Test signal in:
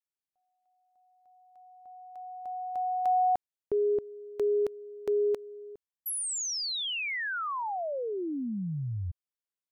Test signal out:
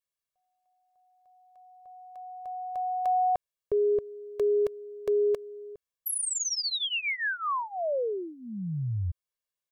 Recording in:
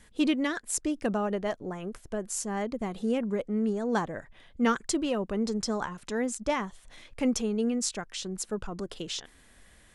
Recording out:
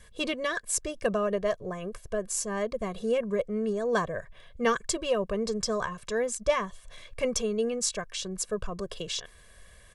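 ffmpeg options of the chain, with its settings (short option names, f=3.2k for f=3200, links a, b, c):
-af "aecho=1:1:1.8:0.85"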